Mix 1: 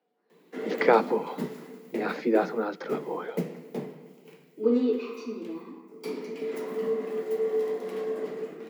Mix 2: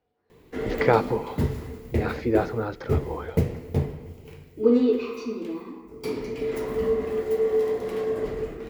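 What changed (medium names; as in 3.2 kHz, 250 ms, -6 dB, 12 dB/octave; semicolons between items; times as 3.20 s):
background +4.5 dB; master: remove steep high-pass 160 Hz 96 dB/octave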